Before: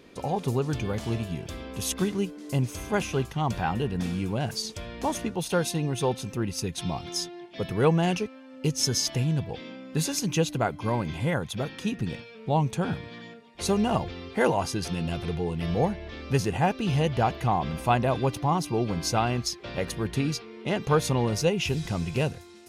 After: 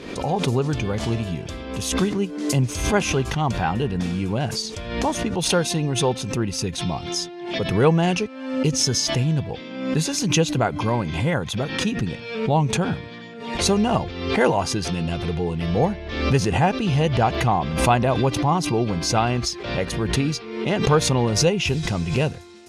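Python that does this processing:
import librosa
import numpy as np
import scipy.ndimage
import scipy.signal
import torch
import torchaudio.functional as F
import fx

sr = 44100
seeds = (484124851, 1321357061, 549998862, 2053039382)

y = fx.band_widen(x, sr, depth_pct=70, at=(2.13, 3.1))
y = scipy.signal.sosfilt(scipy.signal.butter(2, 8800.0, 'lowpass', fs=sr, output='sos'), y)
y = fx.pre_swell(y, sr, db_per_s=62.0)
y = y * librosa.db_to_amplitude(4.5)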